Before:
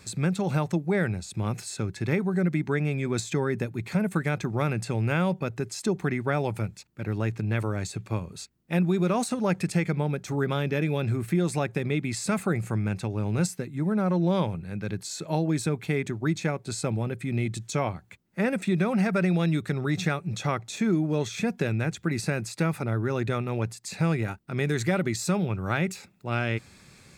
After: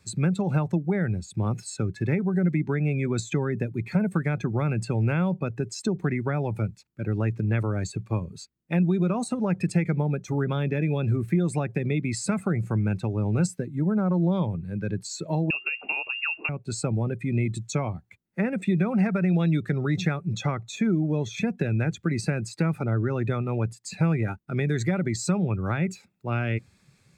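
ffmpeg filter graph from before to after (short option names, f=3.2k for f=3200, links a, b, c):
-filter_complex "[0:a]asettb=1/sr,asplit=3[a][b][c];[a]atrim=end=15.504[d];[b]atrim=start=15.5:end=16.49,asetpts=PTS-STARTPTS,afade=t=in:d=0.004:c=qsin,afade=t=out:st=0.986:d=0.004:c=qsin,acontrast=56,acrusher=bits=8:dc=4:mix=0:aa=0.000001,lowpass=f=2.5k:t=q:w=0.5098,lowpass=f=2.5k:t=q:w=0.6013,lowpass=f=2.5k:t=q:w=0.9,lowpass=f=2.5k:t=q:w=2.563,afreqshift=-2900[e];[c]atrim=start=16.486[f];[d][e]acrossfade=d=0.004:c1=hsin:c2=qsin[g];[g][f]acrossfade=d=0.004:c1=qsin:c2=hsin,afftdn=nr=14:nf=-37,acrossover=split=230[h][i];[i]acompressor=threshold=-30dB:ratio=6[j];[h][j]amix=inputs=2:normalize=0,volume=3dB"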